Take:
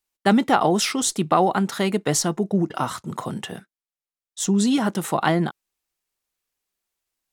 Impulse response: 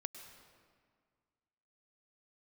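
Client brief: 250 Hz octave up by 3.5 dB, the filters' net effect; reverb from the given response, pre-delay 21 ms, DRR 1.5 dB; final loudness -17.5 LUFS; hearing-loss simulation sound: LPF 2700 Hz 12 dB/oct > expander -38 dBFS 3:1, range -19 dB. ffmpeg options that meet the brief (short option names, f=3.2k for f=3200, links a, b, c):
-filter_complex "[0:a]equalizer=f=250:t=o:g=4.5,asplit=2[a][b];[1:a]atrim=start_sample=2205,adelay=21[c];[b][c]afir=irnorm=-1:irlink=0,volume=1dB[d];[a][d]amix=inputs=2:normalize=0,lowpass=2.7k,agate=range=-19dB:threshold=-38dB:ratio=3,volume=0.5dB"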